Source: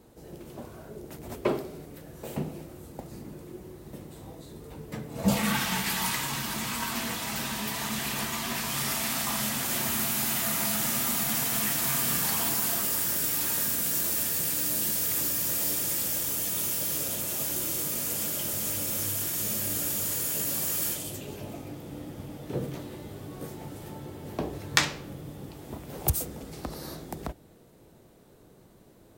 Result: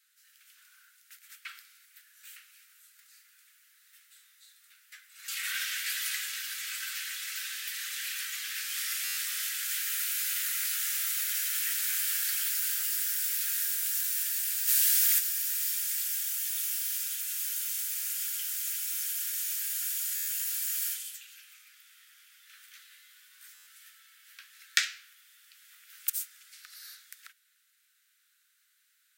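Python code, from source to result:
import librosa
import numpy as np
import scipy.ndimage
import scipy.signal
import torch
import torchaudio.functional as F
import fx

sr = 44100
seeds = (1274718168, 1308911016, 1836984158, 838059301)

y = scipy.signal.sosfilt(scipy.signal.butter(12, 1400.0, 'highpass', fs=sr, output='sos'), x)
y = fx.buffer_glitch(y, sr, at_s=(9.04, 20.15, 23.54), block=512, repeats=10)
y = fx.env_flatten(y, sr, amount_pct=70, at=(14.67, 15.18), fade=0.02)
y = y * librosa.db_to_amplitude(-2.5)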